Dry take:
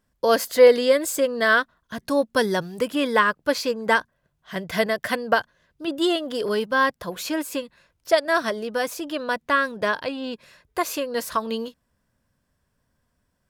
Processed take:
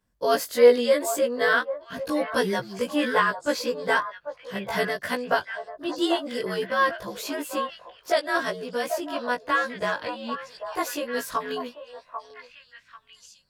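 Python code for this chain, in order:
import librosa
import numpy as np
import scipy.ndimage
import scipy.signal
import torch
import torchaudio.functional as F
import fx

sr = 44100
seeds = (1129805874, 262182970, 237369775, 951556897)

y = fx.frame_reverse(x, sr, frame_ms=41.0)
y = fx.vibrato(y, sr, rate_hz=6.8, depth_cents=13.0)
y = fx.echo_stepped(y, sr, ms=792, hz=810.0, octaves=1.4, feedback_pct=70, wet_db=-5.5)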